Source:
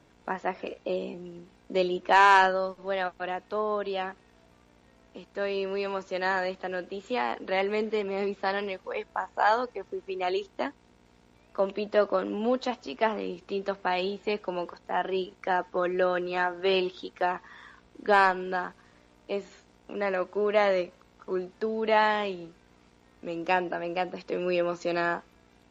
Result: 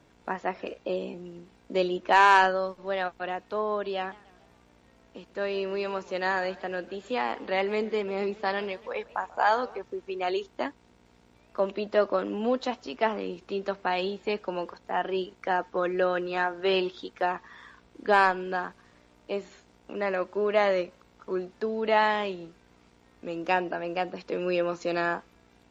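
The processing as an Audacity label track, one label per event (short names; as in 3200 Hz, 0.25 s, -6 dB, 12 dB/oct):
3.970000	9.790000	warbling echo 0.141 s, feedback 49%, depth 209 cents, level -21 dB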